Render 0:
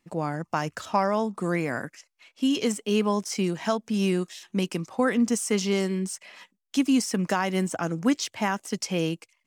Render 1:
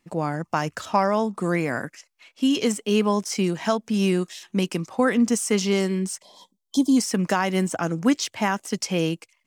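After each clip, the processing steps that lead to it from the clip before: time-frequency box 6.22–6.97 s, 1.1–3.1 kHz -25 dB; trim +3 dB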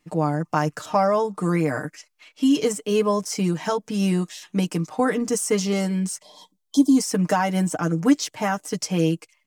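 comb 6.6 ms, depth 76%; dynamic bell 2.8 kHz, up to -6 dB, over -39 dBFS, Q 0.78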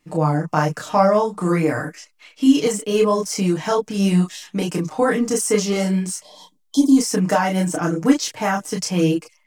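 chorus voices 6, 0.88 Hz, delay 30 ms, depth 4.5 ms; trim +6.5 dB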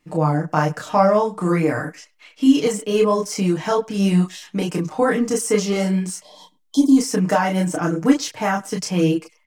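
tone controls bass 0 dB, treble -3 dB; speakerphone echo 100 ms, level -24 dB

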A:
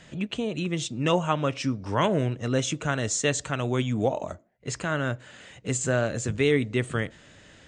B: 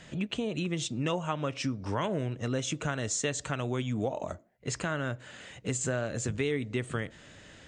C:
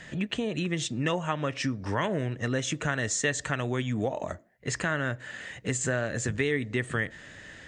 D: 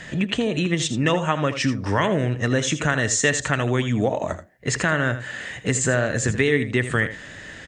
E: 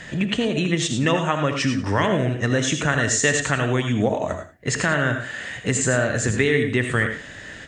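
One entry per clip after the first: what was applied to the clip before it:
compression 3:1, threshold -29 dBFS, peak gain reduction 9.5 dB
peaking EQ 1.8 kHz +10.5 dB 0.3 oct; trim +2 dB
delay 81 ms -12 dB; trim +7.5 dB
reverberation, pre-delay 3 ms, DRR 7 dB

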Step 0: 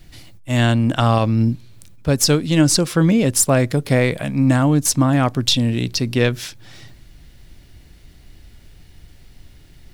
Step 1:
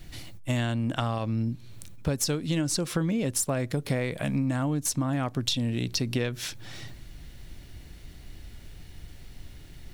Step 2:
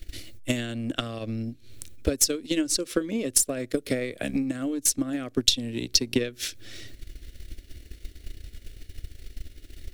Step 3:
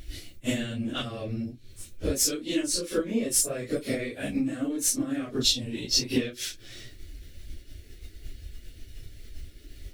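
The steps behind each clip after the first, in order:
band-stop 4.9 kHz, Q 22; compression 12:1, threshold -24 dBFS, peak gain reduction 15 dB
static phaser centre 370 Hz, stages 4; transient shaper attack +9 dB, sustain -7 dB; trim +1.5 dB
phase randomisation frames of 100 ms; trim -1.5 dB

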